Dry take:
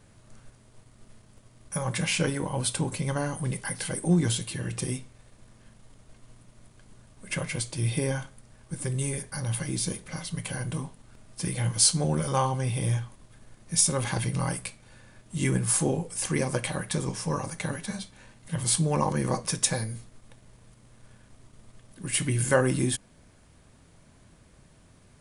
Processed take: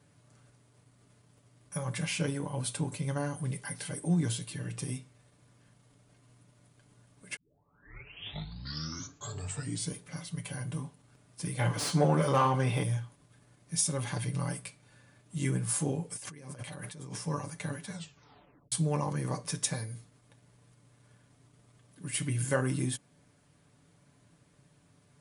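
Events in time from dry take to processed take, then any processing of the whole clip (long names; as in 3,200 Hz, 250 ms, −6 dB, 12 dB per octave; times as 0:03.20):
0:07.36: tape start 2.61 s
0:11.59–0:12.83: mid-hump overdrive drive 24 dB, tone 1,100 Hz, clips at −5.5 dBFS
0:16.11–0:17.21: compressor whose output falls as the input rises −38 dBFS
0:17.90: tape stop 0.82 s
whole clip: high-pass filter 92 Hz; low-shelf EQ 190 Hz +3 dB; comb filter 6.9 ms, depth 52%; level −8 dB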